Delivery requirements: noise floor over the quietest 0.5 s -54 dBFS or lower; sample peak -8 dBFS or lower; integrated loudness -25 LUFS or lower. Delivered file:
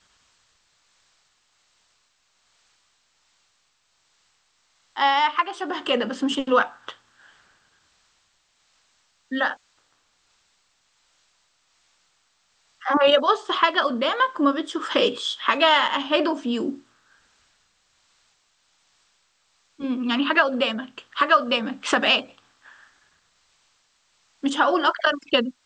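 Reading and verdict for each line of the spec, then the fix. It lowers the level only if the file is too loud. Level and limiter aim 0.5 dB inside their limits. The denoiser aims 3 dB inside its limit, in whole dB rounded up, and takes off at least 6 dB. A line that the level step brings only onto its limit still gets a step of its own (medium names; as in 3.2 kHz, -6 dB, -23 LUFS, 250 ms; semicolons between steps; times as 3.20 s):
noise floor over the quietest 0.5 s -68 dBFS: pass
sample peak -5.5 dBFS: fail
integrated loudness -22.0 LUFS: fail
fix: trim -3.5 dB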